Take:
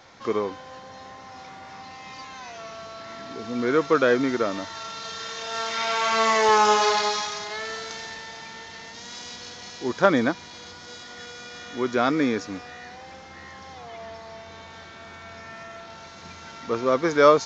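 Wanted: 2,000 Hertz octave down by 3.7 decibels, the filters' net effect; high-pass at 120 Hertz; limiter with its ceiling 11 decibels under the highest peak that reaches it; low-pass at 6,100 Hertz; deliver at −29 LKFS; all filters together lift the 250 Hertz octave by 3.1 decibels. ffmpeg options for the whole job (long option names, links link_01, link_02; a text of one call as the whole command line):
ffmpeg -i in.wav -af "highpass=120,lowpass=6100,equalizer=frequency=250:width_type=o:gain=4,equalizer=frequency=2000:width_type=o:gain=-5,volume=-2.5dB,alimiter=limit=-17dB:level=0:latency=1" out.wav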